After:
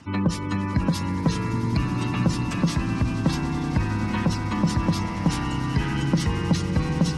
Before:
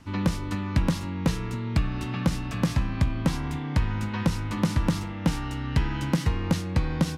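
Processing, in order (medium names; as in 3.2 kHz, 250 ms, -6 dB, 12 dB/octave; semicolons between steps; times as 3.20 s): high-pass 86 Hz 12 dB/octave; treble shelf 5.6 kHz +7.5 dB; spectral gate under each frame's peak -25 dB strong; in parallel at -3 dB: hard clipper -25.5 dBFS, distortion -6 dB; on the sum: echo with a slow build-up 94 ms, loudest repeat 8, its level -17 dB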